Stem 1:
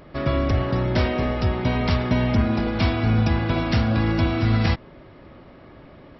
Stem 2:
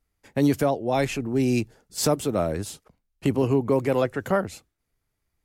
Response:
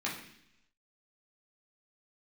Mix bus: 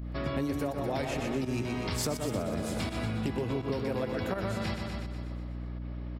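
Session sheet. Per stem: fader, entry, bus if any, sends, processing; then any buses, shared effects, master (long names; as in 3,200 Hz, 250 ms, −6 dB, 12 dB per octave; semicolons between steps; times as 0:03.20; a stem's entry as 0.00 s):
−6.5 dB, 0.00 s, no send, echo send −8 dB, high-pass filter 91 Hz; high-shelf EQ 4,800 Hz +6 dB
−0.5 dB, 0.00 s, no send, echo send −5.5 dB, no processing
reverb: not used
echo: repeating echo 123 ms, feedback 58%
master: fake sidechain pumping 83 BPM, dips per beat 1, −11 dB, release 111 ms; mains hum 60 Hz, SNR 13 dB; downward compressor 6 to 1, threshold −29 dBFS, peak gain reduction 13 dB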